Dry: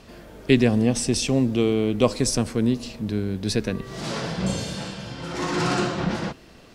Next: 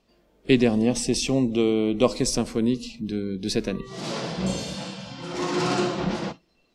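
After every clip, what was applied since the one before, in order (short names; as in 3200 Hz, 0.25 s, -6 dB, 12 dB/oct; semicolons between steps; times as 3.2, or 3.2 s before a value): spectral noise reduction 18 dB; fifteen-band EQ 100 Hz -11 dB, 1600 Hz -5 dB, 10000 Hz -4 dB; on a send at -20 dB: reverb RT60 0.25 s, pre-delay 3 ms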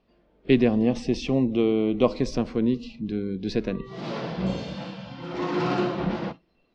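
air absorption 240 m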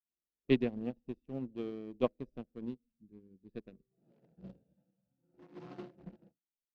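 Wiener smoothing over 41 samples; upward expander 2.5:1, over -38 dBFS; gain -7 dB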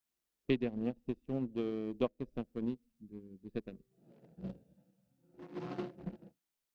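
compressor 2.5:1, threshold -40 dBFS, peak gain reduction 12.5 dB; gain +7 dB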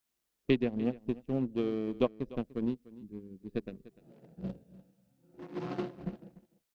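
echo 0.296 s -19 dB; gain +4.5 dB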